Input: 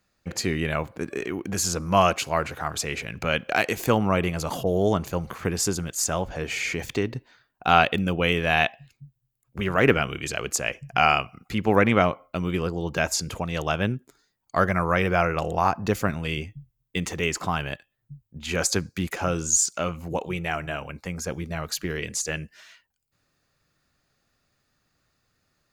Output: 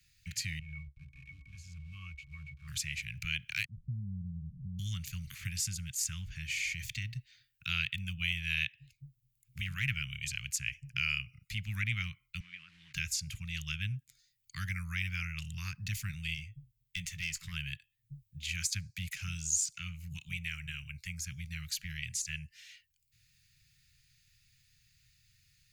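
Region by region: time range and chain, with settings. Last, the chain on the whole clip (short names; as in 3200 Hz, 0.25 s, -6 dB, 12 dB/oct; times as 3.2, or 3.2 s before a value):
0.59–2.68 level-crossing sampler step -31.5 dBFS + bell 230 Hz -4.5 dB 2.2 oct + octave resonator C#, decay 0.12 s
3.65–4.79 inverse Chebyshev low-pass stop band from 1400 Hz, stop band 80 dB + comb 5.1 ms, depth 38%
12.4–12.94 level-crossing sampler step -40 dBFS + BPF 490–2100 Hz + compressor 3:1, threshold -34 dBFS
16.34–17.52 doubler 18 ms -13 dB + tube stage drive 16 dB, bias 0.5
whole clip: Chebyshev band-stop 130–2200 Hz, order 3; three-band squash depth 40%; gain -5.5 dB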